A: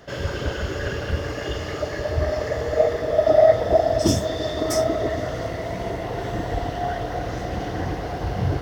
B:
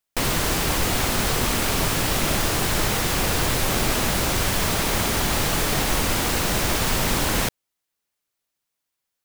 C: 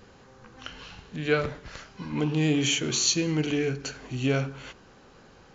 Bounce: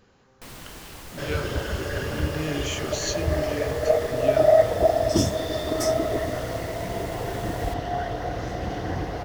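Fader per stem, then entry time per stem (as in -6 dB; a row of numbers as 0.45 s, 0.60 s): -2.0 dB, -19.5 dB, -6.5 dB; 1.10 s, 0.25 s, 0.00 s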